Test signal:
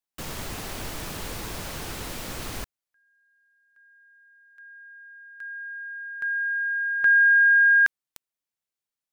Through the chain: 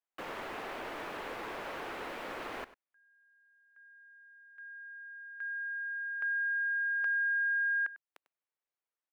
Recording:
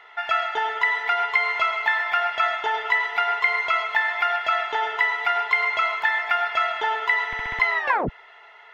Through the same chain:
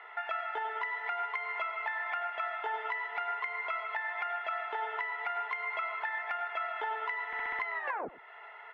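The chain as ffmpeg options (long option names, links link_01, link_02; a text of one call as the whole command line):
ffmpeg -i in.wav -filter_complex "[0:a]acrossover=split=300 2700:gain=0.0708 1 0.0794[link_01][link_02][link_03];[link_01][link_02][link_03]amix=inputs=3:normalize=0,acompressor=threshold=-30dB:ratio=6:attack=2:release=353:knee=6:detection=rms,asplit=2[link_04][link_05];[link_05]aecho=0:1:98:0.141[link_06];[link_04][link_06]amix=inputs=2:normalize=0" out.wav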